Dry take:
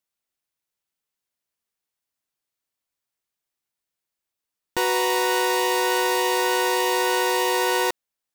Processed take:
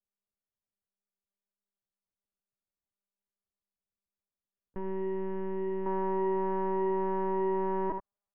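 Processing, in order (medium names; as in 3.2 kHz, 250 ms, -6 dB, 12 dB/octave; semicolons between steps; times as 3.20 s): low-pass 1.2 kHz 24 dB/octave; comb 5 ms, depth 97%; early reflections 13 ms -17.5 dB, 79 ms -10 dB; LPC vocoder at 8 kHz pitch kept; peak limiter -18 dBFS, peak gain reduction 7 dB; peaking EQ 890 Hz -10 dB 1.6 oct, from 5.86 s +2 dB; trim -4 dB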